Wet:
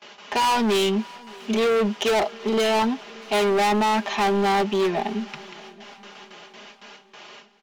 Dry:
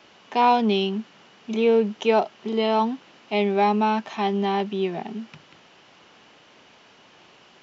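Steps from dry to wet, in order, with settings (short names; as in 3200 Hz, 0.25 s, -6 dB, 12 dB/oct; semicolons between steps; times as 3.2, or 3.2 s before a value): HPF 470 Hz 6 dB/oct; gate with hold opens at -43 dBFS; comb 4.9 ms, depth 60%; overloaded stage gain 27 dB; swung echo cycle 0.831 s, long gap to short 3:1, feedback 42%, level -24 dB; gain +8.5 dB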